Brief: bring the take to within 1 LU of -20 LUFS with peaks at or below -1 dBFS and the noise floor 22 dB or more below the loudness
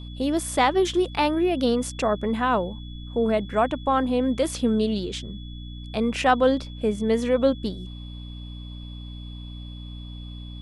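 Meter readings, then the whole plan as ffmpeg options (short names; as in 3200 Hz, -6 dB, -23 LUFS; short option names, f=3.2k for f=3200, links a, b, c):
hum 60 Hz; harmonics up to 300 Hz; hum level -35 dBFS; steady tone 3400 Hz; tone level -46 dBFS; loudness -24.0 LUFS; peak -7.0 dBFS; loudness target -20.0 LUFS
-> -af "bandreject=f=60:t=h:w=4,bandreject=f=120:t=h:w=4,bandreject=f=180:t=h:w=4,bandreject=f=240:t=h:w=4,bandreject=f=300:t=h:w=4"
-af "bandreject=f=3.4k:w=30"
-af "volume=4dB"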